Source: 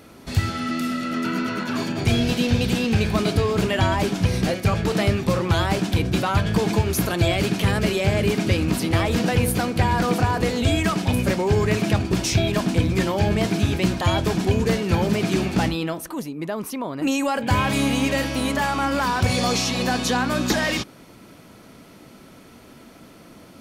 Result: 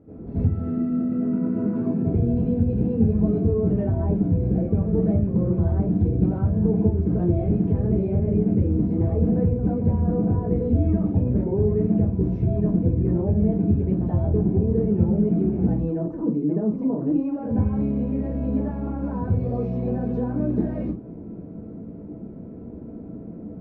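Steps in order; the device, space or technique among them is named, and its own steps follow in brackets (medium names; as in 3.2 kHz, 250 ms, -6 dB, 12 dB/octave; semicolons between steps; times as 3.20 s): television next door (compression, threshold -28 dBFS, peak gain reduction 13.5 dB; low-pass 370 Hz 12 dB/octave; reverberation RT60 0.35 s, pre-delay 75 ms, DRR -11 dB); trim -2.5 dB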